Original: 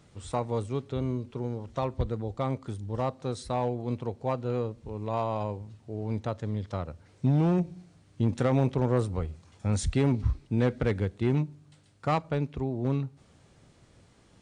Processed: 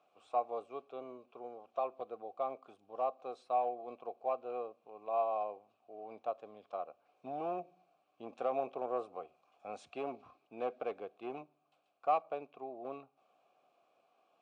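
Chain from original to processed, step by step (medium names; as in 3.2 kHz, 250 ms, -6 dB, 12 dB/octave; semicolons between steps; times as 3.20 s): vowel filter a; dynamic bell 410 Hz, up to +4 dB, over -53 dBFS, Q 1.3; high-pass 260 Hz 12 dB/octave; trim +2.5 dB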